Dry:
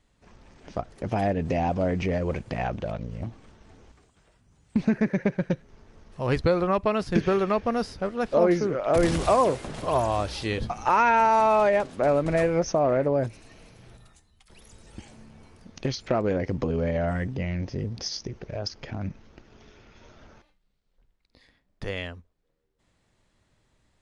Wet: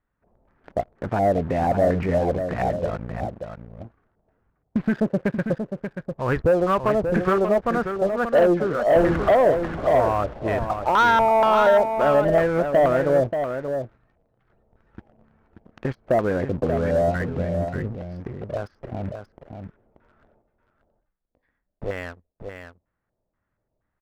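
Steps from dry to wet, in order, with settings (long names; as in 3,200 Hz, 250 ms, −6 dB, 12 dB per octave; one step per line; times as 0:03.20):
auto-filter low-pass square 2.1 Hz 660–1,500 Hz
in parallel at −11 dB: dead-zone distortion −37 dBFS
on the sum: leveller curve on the samples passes 2
single-tap delay 583 ms −7.5 dB
level −8 dB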